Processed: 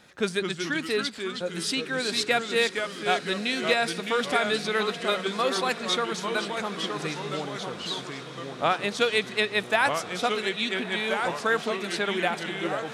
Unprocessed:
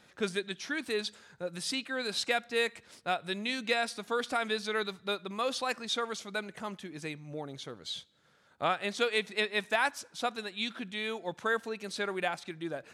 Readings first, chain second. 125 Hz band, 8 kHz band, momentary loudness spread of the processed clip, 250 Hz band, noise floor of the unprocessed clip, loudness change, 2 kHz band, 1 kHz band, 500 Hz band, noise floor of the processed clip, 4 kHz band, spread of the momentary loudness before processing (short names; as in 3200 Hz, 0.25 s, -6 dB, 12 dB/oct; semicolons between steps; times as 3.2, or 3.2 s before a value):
+8.5 dB, +6.5 dB, 7 LU, +7.5 dB, -64 dBFS, +7.0 dB, +6.5 dB, +7.0 dB, +7.0 dB, -40 dBFS, +7.0 dB, 11 LU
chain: diffused feedback echo 1.32 s, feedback 60%, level -14 dB; echoes that change speed 0.187 s, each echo -2 st, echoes 2, each echo -6 dB; gain +5.5 dB